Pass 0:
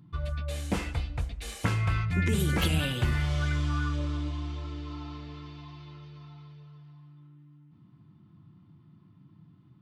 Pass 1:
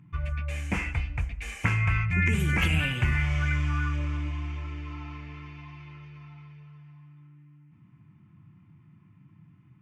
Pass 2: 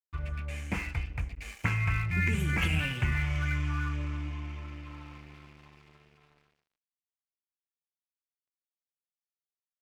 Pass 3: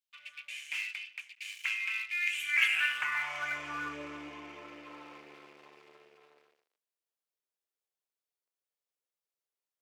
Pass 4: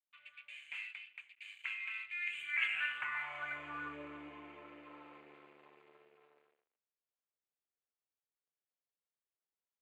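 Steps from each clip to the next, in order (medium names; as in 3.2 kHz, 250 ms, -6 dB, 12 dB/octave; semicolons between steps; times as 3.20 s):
FFT filter 120 Hz 0 dB, 220 Hz -3 dB, 520 Hz -8 dB, 950 Hz -1 dB, 1.3 kHz -1 dB, 2.4 kHz +9 dB, 3.9 kHz -15 dB, 6.4 kHz -3 dB, 11 kHz -10 dB; trim +2 dB
crossover distortion -44 dBFS; trim -3 dB
high-pass sweep 2.9 kHz -> 440 Hz, 2.33–3.84 s
boxcar filter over 8 samples; trim -5 dB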